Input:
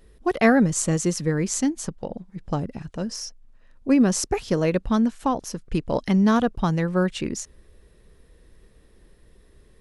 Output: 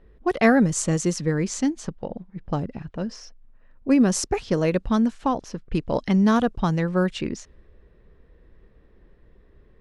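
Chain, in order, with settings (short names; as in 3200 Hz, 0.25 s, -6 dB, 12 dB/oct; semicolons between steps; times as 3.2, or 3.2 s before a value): low-pass opened by the level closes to 2000 Hz, open at -16 dBFS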